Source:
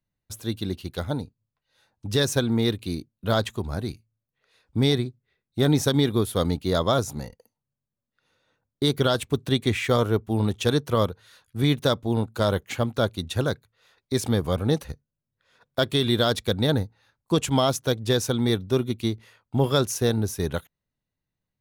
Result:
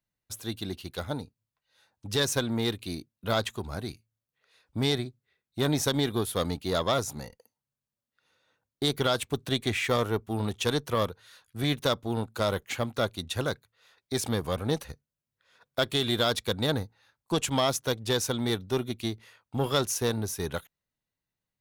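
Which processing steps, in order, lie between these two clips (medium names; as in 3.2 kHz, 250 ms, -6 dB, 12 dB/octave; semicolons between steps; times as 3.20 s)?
single-diode clipper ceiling -12.5 dBFS; bass shelf 440 Hz -7 dB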